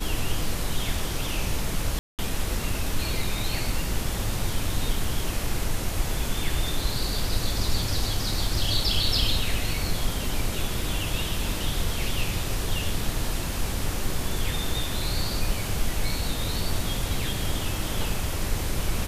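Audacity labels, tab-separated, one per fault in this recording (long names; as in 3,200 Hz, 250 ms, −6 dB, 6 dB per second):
1.990000	2.190000	drop-out 198 ms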